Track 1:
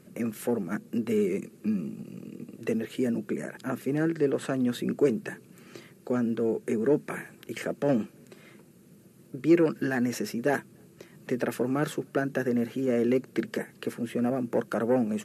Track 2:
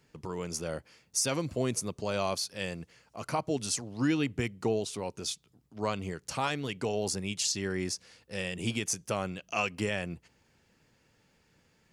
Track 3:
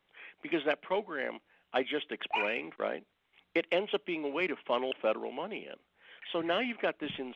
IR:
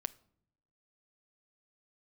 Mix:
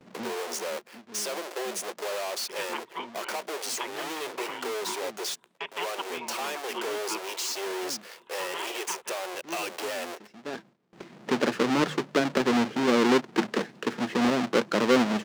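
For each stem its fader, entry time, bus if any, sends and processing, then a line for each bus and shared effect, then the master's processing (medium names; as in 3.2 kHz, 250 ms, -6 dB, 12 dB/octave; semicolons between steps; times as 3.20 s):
+0.5 dB, 0.00 s, no bus, no send, square wave that keeps the level; three-band isolator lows -17 dB, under 160 Hz, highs -15 dB, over 6.8 kHz; auto duck -23 dB, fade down 0.50 s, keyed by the second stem
-8.0 dB, 0.00 s, bus A, no send, square wave that keeps the level; waveshaping leveller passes 5
+0.5 dB, 2.05 s, bus A, send -12 dB, spectral gate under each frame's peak -15 dB weak; peaking EQ 8.5 kHz +13.5 dB 0.87 oct; small resonant body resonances 370/950 Hz, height 18 dB, ringing for 30 ms
bus A: 0.0 dB, Chebyshev high-pass 360 Hz, order 5; compression 2:1, threshold -31 dBFS, peak gain reduction 4.5 dB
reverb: on, pre-delay 7 ms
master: gate with hold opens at -40 dBFS; treble shelf 9.6 kHz -3.5 dB; hum notches 50/100/150 Hz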